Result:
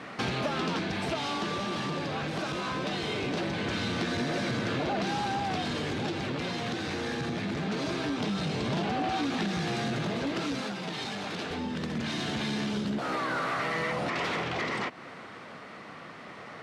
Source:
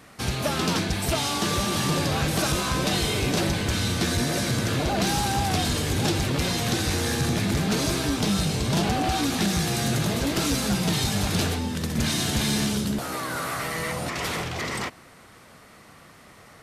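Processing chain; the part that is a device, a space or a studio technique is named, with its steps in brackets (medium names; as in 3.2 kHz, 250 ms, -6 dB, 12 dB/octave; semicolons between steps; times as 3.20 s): AM radio (band-pass 170–3400 Hz; compression 4:1, threshold -37 dBFS, peak gain reduction 13 dB; saturation -30 dBFS, distortion -21 dB; tremolo 0.22 Hz, depth 28%); 10.61–11.51 s: high-pass 300 Hz 6 dB/octave; trim +9 dB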